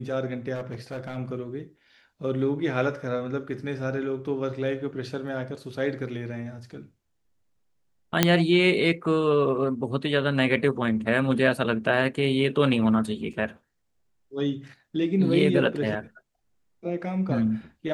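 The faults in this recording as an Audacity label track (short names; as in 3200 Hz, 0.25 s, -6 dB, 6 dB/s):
0.540000	1.180000	clipped -28.5 dBFS
8.230000	8.230000	pop -2 dBFS
13.330000	13.330000	gap 4.3 ms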